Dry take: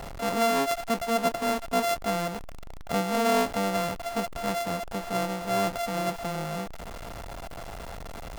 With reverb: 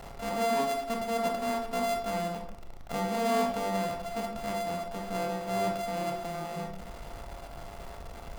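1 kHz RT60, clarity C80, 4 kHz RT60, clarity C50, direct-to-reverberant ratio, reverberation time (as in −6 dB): 0.65 s, 9.0 dB, 0.40 s, 6.0 dB, 2.0 dB, 0.75 s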